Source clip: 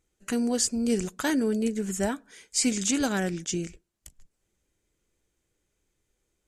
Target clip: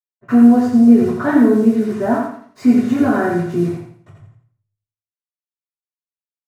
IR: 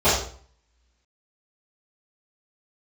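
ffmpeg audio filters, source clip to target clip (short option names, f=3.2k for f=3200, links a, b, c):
-filter_complex "[0:a]lowpass=1.3k,asplit=2[a][b];[b]alimiter=limit=-22.5dB:level=0:latency=1:release=19,volume=-0.5dB[c];[a][c]amix=inputs=2:normalize=0,acrusher=bits=6:mix=0:aa=0.5,aecho=1:1:85|170|255|340:0.631|0.221|0.0773|0.0271[d];[1:a]atrim=start_sample=2205,asetrate=74970,aresample=44100[e];[d][e]afir=irnorm=-1:irlink=0,volume=-11dB"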